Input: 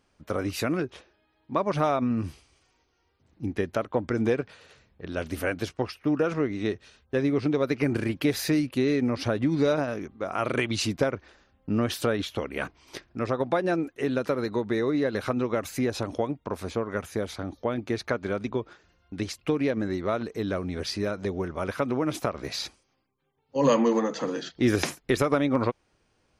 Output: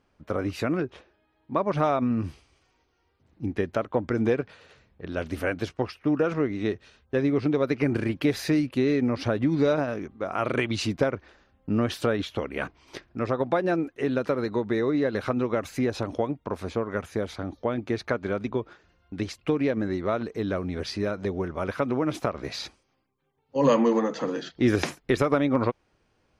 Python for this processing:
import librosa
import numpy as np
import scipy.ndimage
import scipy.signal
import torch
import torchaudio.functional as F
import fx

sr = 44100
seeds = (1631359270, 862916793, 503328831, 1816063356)

y = fx.lowpass(x, sr, hz=fx.steps((0.0, 2400.0), (1.77, 3900.0)), slope=6)
y = F.gain(torch.from_numpy(y), 1.0).numpy()